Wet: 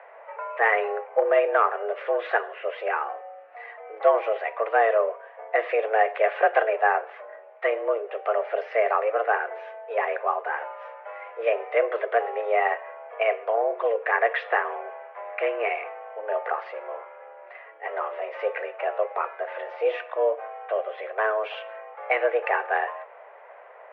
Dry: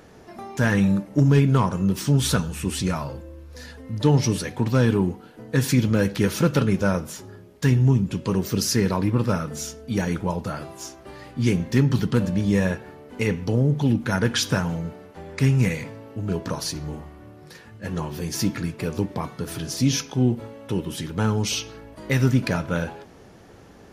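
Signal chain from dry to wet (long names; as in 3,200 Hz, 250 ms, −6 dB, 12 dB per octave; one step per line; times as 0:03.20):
single-sideband voice off tune +220 Hz 300–2,200 Hz
level +4 dB
Opus 96 kbit/s 48,000 Hz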